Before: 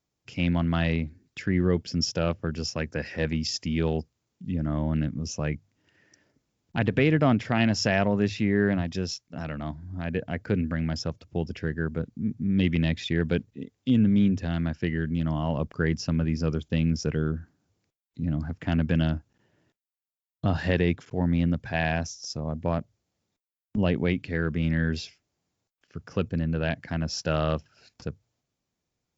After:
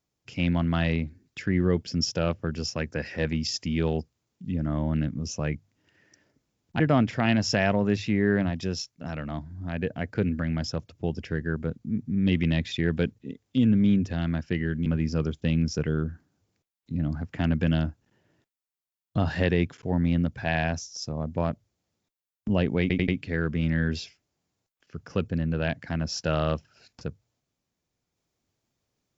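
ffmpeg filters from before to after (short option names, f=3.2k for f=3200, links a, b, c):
-filter_complex "[0:a]asplit=6[a][b][c][d][e][f];[a]atrim=end=6.802[g];[b]atrim=start=7.118:end=15.182[h];[c]atrim=start=16.138:end=24.182[i];[d]atrim=start=24.088:end=24.182[j];[e]atrim=start=24.088:end=24.182[k];[f]atrim=start=24.088[l];[g][h]acrossfade=d=0.004:c1=hsin:c2=hsin[m];[m][i]acrossfade=d=0.004:c1=hsin:c2=hsin[n];[n][j]acrossfade=d=0.004:c1=hsin:c2=hsin[o];[o][k]acrossfade=d=0.004:c1=hsin:c2=hsin[p];[p][l]acrossfade=d=0.004:c1=hsin:c2=hsin"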